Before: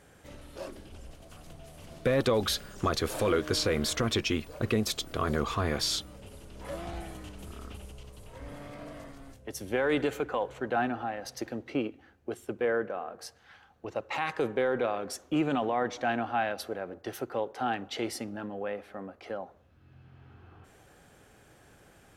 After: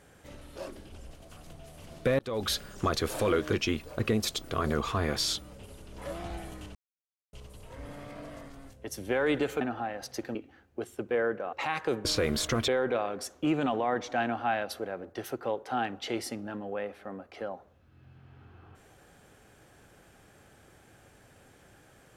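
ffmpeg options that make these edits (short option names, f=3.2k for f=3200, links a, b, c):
-filter_complex "[0:a]asplit=10[a][b][c][d][e][f][g][h][i][j];[a]atrim=end=2.19,asetpts=PTS-STARTPTS,afade=t=out:st=2.186:d=0.004:c=hsin[k];[b]atrim=start=2.19:end=3.532,asetpts=PTS-STARTPTS,afade=t=in:d=0.33[l];[c]atrim=start=4.158:end=7.38,asetpts=PTS-STARTPTS,afade=t=out:st=3.218:d=0.004:c=hsin[m];[d]atrim=start=7.38:end=7.96,asetpts=PTS-STARTPTS,volume=0[n];[e]atrim=start=7.96:end=10.242,asetpts=PTS-STARTPTS,afade=t=in:d=0.004:c=hsin[o];[f]atrim=start=10.838:end=11.582[p];[g]atrim=start=11.848:end=13.032[q];[h]atrim=start=14.048:end=14.572[r];[i]atrim=start=3.528:end=4.162[s];[j]atrim=start=14.568[t];[k][l]concat=n=2:v=0:a=1[u];[m][n][o]concat=n=3:v=0:a=1[v];[u][v]acrossfade=d=0.004:c1=hsin:c2=hsin[w];[w][p]acrossfade=d=0.004:c1=hsin:c2=hsin[x];[x][q]acrossfade=d=0.004:c1=hsin:c2=hsin[y];[y][r]acrossfade=d=0.004:c1=hsin:c2=hsin[z];[z][s]acrossfade=d=0.004:c1=hsin:c2=hsin[aa];[aa][t]acrossfade=d=0.004:c1=hsin:c2=hsin"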